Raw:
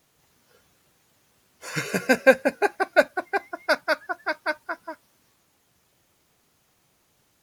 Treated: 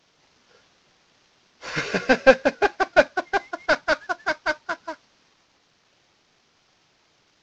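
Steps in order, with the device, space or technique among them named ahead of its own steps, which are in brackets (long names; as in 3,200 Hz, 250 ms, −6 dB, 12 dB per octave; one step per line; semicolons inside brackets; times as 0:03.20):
early wireless headset (high-pass filter 190 Hz 6 dB per octave; variable-slope delta modulation 32 kbit/s)
level +3.5 dB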